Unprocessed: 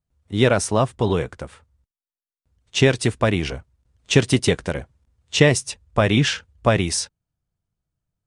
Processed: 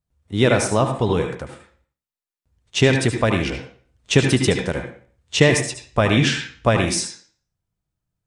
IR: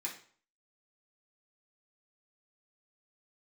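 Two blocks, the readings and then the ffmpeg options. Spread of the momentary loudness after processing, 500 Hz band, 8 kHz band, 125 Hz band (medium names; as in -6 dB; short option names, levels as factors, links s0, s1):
13 LU, +0.5 dB, +0.5 dB, +0.5 dB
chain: -filter_complex "[0:a]asplit=2[s0][s1];[1:a]atrim=start_sample=2205,highshelf=f=8600:g=-10,adelay=73[s2];[s1][s2]afir=irnorm=-1:irlink=0,volume=0.631[s3];[s0][s3]amix=inputs=2:normalize=0"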